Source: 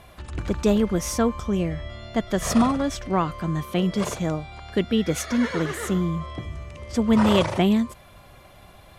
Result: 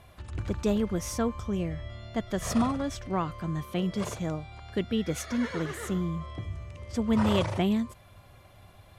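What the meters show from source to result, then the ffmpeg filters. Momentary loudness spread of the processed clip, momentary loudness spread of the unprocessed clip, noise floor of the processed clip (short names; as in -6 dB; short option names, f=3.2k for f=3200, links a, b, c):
12 LU, 12 LU, -54 dBFS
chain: -af "equalizer=f=98:w=2.7:g=9.5,volume=-7dB"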